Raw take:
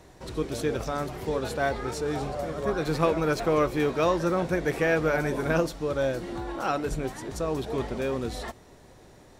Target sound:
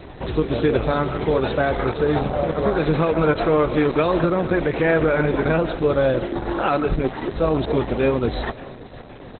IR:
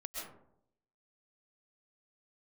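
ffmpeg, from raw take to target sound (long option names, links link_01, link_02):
-filter_complex "[0:a]asplit=2[link_01][link_02];[1:a]atrim=start_sample=2205[link_03];[link_02][link_03]afir=irnorm=-1:irlink=0,volume=-12dB[link_04];[link_01][link_04]amix=inputs=2:normalize=0,alimiter=limit=-18.5dB:level=0:latency=1:release=90,asettb=1/sr,asplit=3[link_05][link_06][link_07];[link_05]atrim=end=6.194[link_08];[link_06]atrim=start=6.19:end=6.7,asetpts=PTS-STARTPTS,afade=type=in:duration=0.004:curve=qsin,afade=type=out:start_time=0.506:duration=0.004:curve=qsin,highshelf=frequency=11000:gain=3[link_09];[link_07]atrim=start=6.696[link_10];[link_08][link_09]acrossfade=duration=0.004:curve1=hsin:curve2=qsin[link_11];[link_11][link_10]acrossfade=duration=0.004:curve1=qsin:curve2=hsin,aecho=1:1:541|1082|1623:0.0891|0.0401|0.018,asplit=2[link_12][link_13];[link_13]acompressor=threshold=-42dB:ratio=4,volume=-2dB[link_14];[link_12][link_14]amix=inputs=2:normalize=0,volume=8.5dB" -ar 48000 -c:a libopus -b:a 8k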